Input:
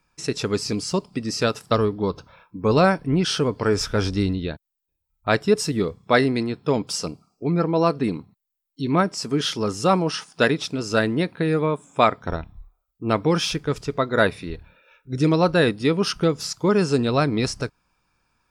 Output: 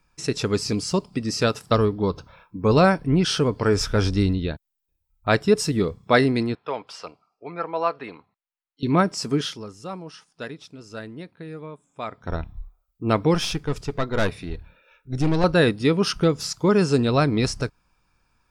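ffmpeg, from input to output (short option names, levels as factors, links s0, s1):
-filter_complex "[0:a]asettb=1/sr,asplit=3[s0][s1][s2];[s0]atrim=end=6.554[s3];[s1]atrim=start=6.55:end=8.83,asetpts=PTS-STARTPTS,afade=t=in:d=0.004:c=qsin,afade=t=out:st=2.276:d=0.004:c=qsin,acrossover=split=550 3500:gain=0.0794 1 0.0794[s4][s5][s6];[s4][s5][s6]amix=inputs=3:normalize=0[s7];[s2]atrim=start=8.826[s8];[s3][s7]acrossfade=d=0.004:c1=hsin:c2=qsin[s9];[s9][s8]acrossfade=d=0.004:c1=qsin:c2=hsin,asettb=1/sr,asplit=3[s10][s11][s12];[s10]atrim=end=13.344[s13];[s11]atrim=start=13.34:end=15.44,asetpts=PTS-STARTPTS,afade=t=in:d=0.004:c=qsin,afade=t=out:st=2.096:d=0.004:c=qsin,aeval=exprs='(tanh(7.08*val(0)+0.45)-tanh(0.45))/7.08':c=same[s14];[s12]atrim=start=15.436[s15];[s13][s14]acrossfade=d=0.004:c1=hsin:c2=qsin[s16];[s16][s15]acrossfade=d=0.004:c1=qsin:c2=hsin,asplit=3[s17][s18][s19];[s17]atrim=end=9.75,asetpts=PTS-STARTPTS,afade=t=out:st=9.34:d=0.41:c=qua:silence=0.158489[s20];[s18]atrim=start=9.75:end=11.99,asetpts=PTS-STARTPTS,volume=0.158[s21];[s19]atrim=start=11.99,asetpts=PTS-STARTPTS,afade=t=in:d=0.41:c=qua:silence=0.158489[s22];[s20][s21][s22]concat=n=3:v=0:a=1,lowshelf=f=78:g=8"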